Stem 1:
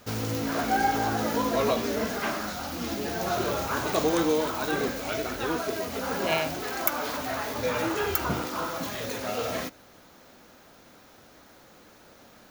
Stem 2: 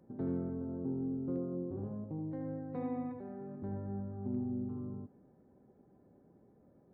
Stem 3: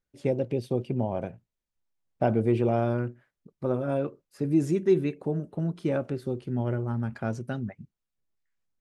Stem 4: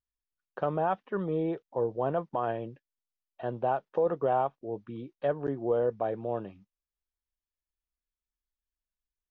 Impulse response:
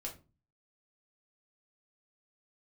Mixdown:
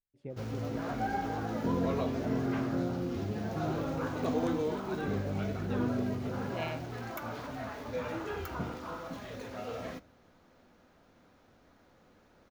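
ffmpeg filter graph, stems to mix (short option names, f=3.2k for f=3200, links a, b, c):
-filter_complex "[0:a]adelay=300,volume=-11dB,asplit=2[a][b];[b]volume=-10dB[c];[1:a]adelay=1450,volume=1dB[d];[2:a]volume=-18dB[e];[3:a]volume=-17dB[f];[4:a]atrim=start_sample=2205[g];[c][g]afir=irnorm=-1:irlink=0[h];[a][d][e][f][h]amix=inputs=5:normalize=0,lowpass=f=2.5k:p=1,lowshelf=f=200:g=6"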